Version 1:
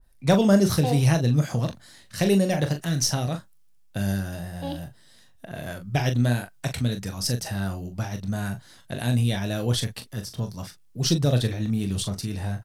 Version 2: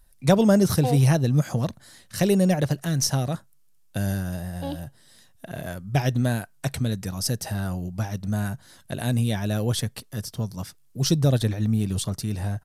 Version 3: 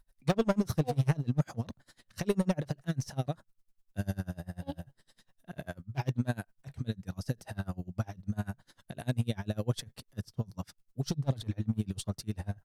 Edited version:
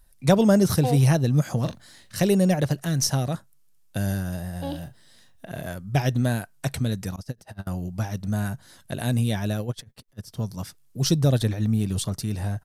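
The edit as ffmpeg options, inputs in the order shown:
-filter_complex "[0:a]asplit=2[a][b];[2:a]asplit=2[c][d];[1:a]asplit=5[e][f][g][h][i];[e]atrim=end=1.652[j];[a]atrim=start=1.648:end=2.162[k];[f]atrim=start=2.158:end=4.732[l];[b]atrim=start=4.728:end=5.492[m];[g]atrim=start=5.488:end=7.162[n];[c]atrim=start=7.158:end=7.672[o];[h]atrim=start=7.668:end=9.73[p];[d]atrim=start=9.49:end=10.44[q];[i]atrim=start=10.2[r];[j][k]acrossfade=d=0.004:c1=hsin:c2=hsin[s];[s][l]acrossfade=d=0.004:c1=hsin:c2=hsin[t];[t][m]acrossfade=d=0.004:c1=hsin:c2=hsin[u];[u][n]acrossfade=d=0.004:c1=hsin:c2=hsin[v];[v][o]acrossfade=d=0.004:c1=hsin:c2=hsin[w];[w][p]acrossfade=d=0.004:c1=hsin:c2=hsin[x];[x][q]acrossfade=d=0.24:c1=tri:c2=tri[y];[y][r]acrossfade=d=0.24:c1=tri:c2=tri"

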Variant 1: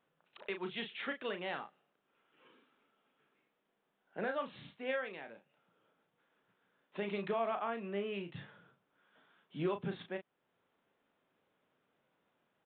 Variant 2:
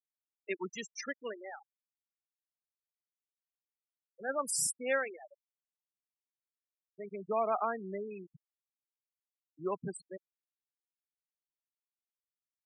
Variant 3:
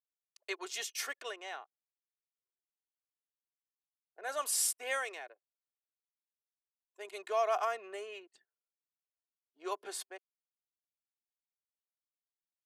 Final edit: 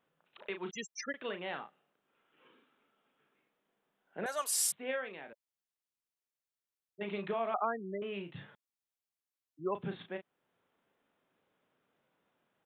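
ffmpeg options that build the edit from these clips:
-filter_complex "[1:a]asplit=4[a][b][c][d];[0:a]asplit=6[e][f][g][h][i][j];[e]atrim=end=0.712[k];[a]atrim=start=0.708:end=1.142[l];[f]atrim=start=1.138:end=4.262[m];[2:a]atrim=start=4.258:end=4.722[n];[g]atrim=start=4.718:end=5.332[o];[b]atrim=start=5.328:end=7.012[p];[h]atrim=start=7.008:end=7.542[q];[c]atrim=start=7.538:end=8.022[r];[i]atrim=start=8.018:end=8.552[s];[d]atrim=start=8.548:end=9.752[t];[j]atrim=start=9.748[u];[k][l]acrossfade=d=0.004:c1=hsin:c2=hsin[v];[v][m]acrossfade=d=0.004:c1=hsin:c2=hsin[w];[w][n]acrossfade=d=0.004:c1=hsin:c2=hsin[x];[x][o]acrossfade=d=0.004:c1=hsin:c2=hsin[y];[y][p]acrossfade=d=0.004:c1=hsin:c2=hsin[z];[z][q]acrossfade=d=0.004:c1=hsin:c2=hsin[aa];[aa][r]acrossfade=d=0.004:c1=hsin:c2=hsin[ab];[ab][s]acrossfade=d=0.004:c1=hsin:c2=hsin[ac];[ac][t]acrossfade=d=0.004:c1=hsin:c2=hsin[ad];[ad][u]acrossfade=d=0.004:c1=hsin:c2=hsin"

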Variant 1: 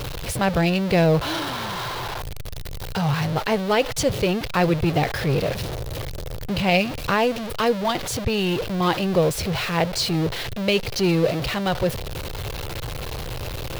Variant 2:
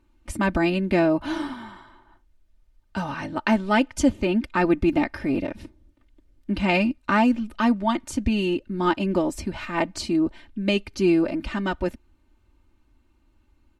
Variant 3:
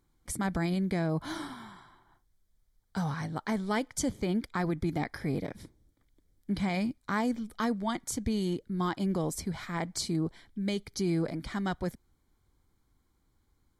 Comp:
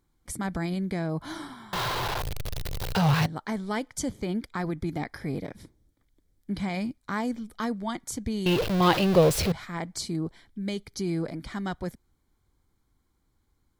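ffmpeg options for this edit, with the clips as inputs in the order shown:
-filter_complex "[0:a]asplit=2[a][b];[2:a]asplit=3[c][d][e];[c]atrim=end=1.732[f];[a]atrim=start=1.728:end=3.262[g];[d]atrim=start=3.258:end=8.462[h];[b]atrim=start=8.458:end=9.522[i];[e]atrim=start=9.518[j];[f][g]acrossfade=d=0.004:c1=hsin:c2=hsin[k];[k][h]acrossfade=d=0.004:c1=hsin:c2=hsin[l];[l][i]acrossfade=d=0.004:c1=hsin:c2=hsin[m];[m][j]acrossfade=d=0.004:c1=hsin:c2=hsin"

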